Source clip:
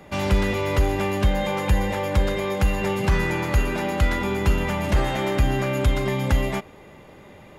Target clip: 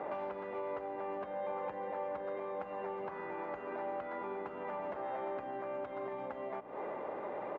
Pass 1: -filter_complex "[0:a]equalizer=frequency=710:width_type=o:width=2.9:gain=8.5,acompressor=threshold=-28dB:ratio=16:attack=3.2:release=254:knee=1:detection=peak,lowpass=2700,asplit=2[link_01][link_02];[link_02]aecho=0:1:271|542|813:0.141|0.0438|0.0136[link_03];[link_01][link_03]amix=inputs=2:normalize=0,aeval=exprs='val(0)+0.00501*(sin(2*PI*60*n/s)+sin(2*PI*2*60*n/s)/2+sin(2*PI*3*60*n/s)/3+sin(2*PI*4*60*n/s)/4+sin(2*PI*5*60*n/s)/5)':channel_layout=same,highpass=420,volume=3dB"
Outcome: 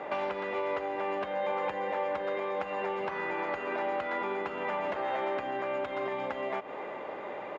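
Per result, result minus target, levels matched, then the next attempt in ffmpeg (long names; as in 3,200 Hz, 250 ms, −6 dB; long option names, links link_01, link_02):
downward compressor: peak gain reduction −6.5 dB; 2,000 Hz band +5.5 dB
-filter_complex "[0:a]equalizer=frequency=710:width_type=o:width=2.9:gain=8.5,acompressor=threshold=-35dB:ratio=16:attack=3.2:release=254:knee=1:detection=peak,lowpass=2700,asplit=2[link_01][link_02];[link_02]aecho=0:1:271|542|813:0.141|0.0438|0.0136[link_03];[link_01][link_03]amix=inputs=2:normalize=0,aeval=exprs='val(0)+0.00501*(sin(2*PI*60*n/s)+sin(2*PI*2*60*n/s)/2+sin(2*PI*3*60*n/s)/3+sin(2*PI*4*60*n/s)/4+sin(2*PI*5*60*n/s)/5)':channel_layout=same,highpass=420,volume=3dB"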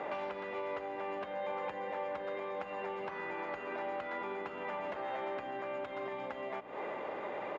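2,000 Hz band +5.5 dB
-filter_complex "[0:a]equalizer=frequency=710:width_type=o:width=2.9:gain=8.5,acompressor=threshold=-35dB:ratio=16:attack=3.2:release=254:knee=1:detection=peak,lowpass=1300,asplit=2[link_01][link_02];[link_02]aecho=0:1:271|542|813:0.141|0.0438|0.0136[link_03];[link_01][link_03]amix=inputs=2:normalize=0,aeval=exprs='val(0)+0.00501*(sin(2*PI*60*n/s)+sin(2*PI*2*60*n/s)/2+sin(2*PI*3*60*n/s)/3+sin(2*PI*4*60*n/s)/4+sin(2*PI*5*60*n/s)/5)':channel_layout=same,highpass=420,volume=3dB"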